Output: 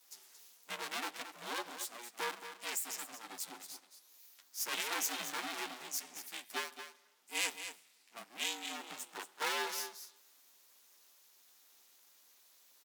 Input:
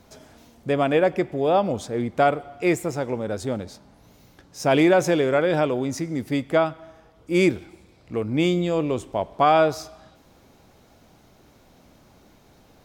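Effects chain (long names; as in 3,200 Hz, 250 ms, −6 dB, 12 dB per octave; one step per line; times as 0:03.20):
lower of the sound and its delayed copy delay 9.7 ms
Butterworth high-pass 440 Hz 72 dB per octave
first difference
ring modulation 240 Hz
on a send: single-tap delay 225 ms −10 dB
on the sum: level +3 dB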